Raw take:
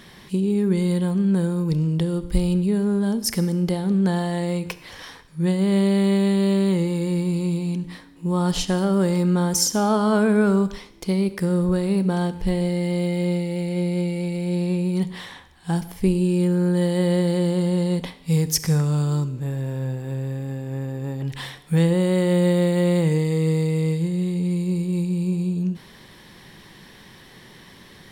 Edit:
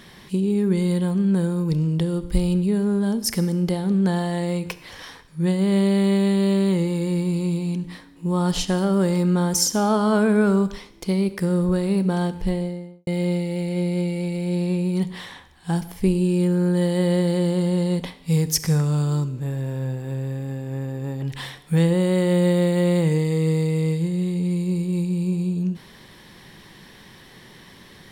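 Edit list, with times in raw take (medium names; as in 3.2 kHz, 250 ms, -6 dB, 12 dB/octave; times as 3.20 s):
12.36–13.07 s: studio fade out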